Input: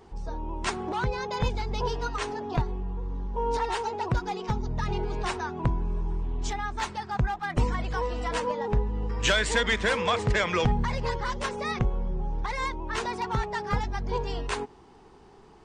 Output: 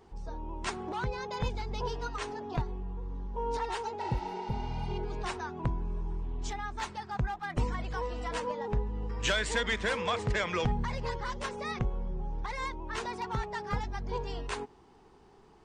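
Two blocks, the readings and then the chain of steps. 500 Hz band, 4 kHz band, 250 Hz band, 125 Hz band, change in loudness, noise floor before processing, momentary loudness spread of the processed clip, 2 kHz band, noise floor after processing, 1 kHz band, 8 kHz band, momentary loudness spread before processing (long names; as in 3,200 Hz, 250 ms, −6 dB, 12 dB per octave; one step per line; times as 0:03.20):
−5.5 dB, −5.5 dB, −5.5 dB, −5.5 dB, −5.5 dB, −53 dBFS, 8 LU, −5.5 dB, −58 dBFS, −5.5 dB, −5.5 dB, 8 LU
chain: healed spectral selection 0:04.05–0:04.93, 600–8,600 Hz both
level −5.5 dB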